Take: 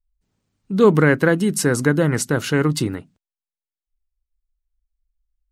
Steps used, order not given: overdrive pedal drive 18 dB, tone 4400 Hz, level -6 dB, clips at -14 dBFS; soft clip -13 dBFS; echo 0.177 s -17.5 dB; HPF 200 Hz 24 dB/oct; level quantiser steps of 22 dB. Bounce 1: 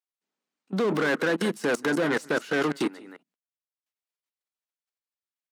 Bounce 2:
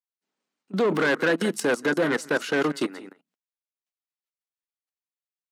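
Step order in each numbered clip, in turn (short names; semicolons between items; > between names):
echo > overdrive pedal > level quantiser > soft clip > HPF; echo > soft clip > level quantiser > overdrive pedal > HPF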